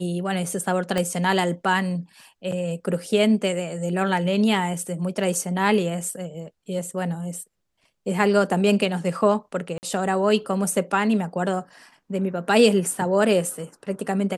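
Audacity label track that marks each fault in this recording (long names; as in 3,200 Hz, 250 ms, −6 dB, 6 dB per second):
0.980000	0.980000	click −11 dBFS
9.780000	9.830000	drop-out 49 ms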